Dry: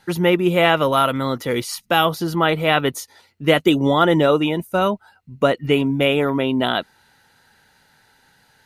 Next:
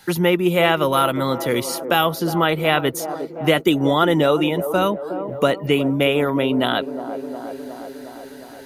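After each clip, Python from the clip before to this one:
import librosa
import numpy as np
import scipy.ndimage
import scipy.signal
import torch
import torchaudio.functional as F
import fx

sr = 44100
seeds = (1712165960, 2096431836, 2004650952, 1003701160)

y = fx.high_shelf(x, sr, hz=12000.0, db=11.0)
y = fx.echo_wet_bandpass(y, sr, ms=360, feedback_pct=60, hz=470.0, wet_db=-11.0)
y = fx.band_squash(y, sr, depth_pct=40)
y = y * 10.0 ** (-1.0 / 20.0)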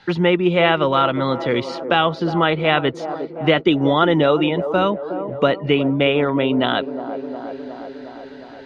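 y = scipy.signal.sosfilt(scipy.signal.butter(4, 4200.0, 'lowpass', fs=sr, output='sos'), x)
y = y * 10.0 ** (1.0 / 20.0)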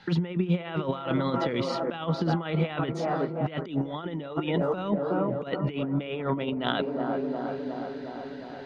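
y = fx.echo_bbd(x, sr, ms=384, stages=4096, feedback_pct=62, wet_db=-15)
y = fx.over_compress(y, sr, threshold_db=-21.0, ratio=-0.5)
y = fx.peak_eq(y, sr, hz=180.0, db=6.5, octaves=0.64)
y = y * 10.0 ** (-7.5 / 20.0)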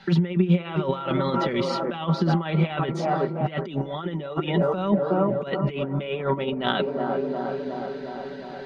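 y = x + 0.58 * np.pad(x, (int(5.2 * sr / 1000.0), 0))[:len(x)]
y = y * 10.0 ** (2.5 / 20.0)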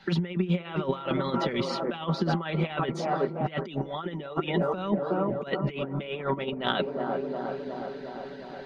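y = fx.hpss(x, sr, part='harmonic', gain_db=-7)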